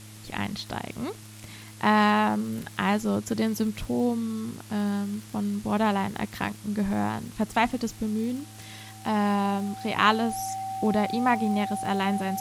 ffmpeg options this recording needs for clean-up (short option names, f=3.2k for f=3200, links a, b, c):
-af "adeclick=t=4,bandreject=f=106.8:t=h:w=4,bandreject=f=213.6:t=h:w=4,bandreject=f=320.4:t=h:w=4,bandreject=f=770:w=30,afwtdn=0.004"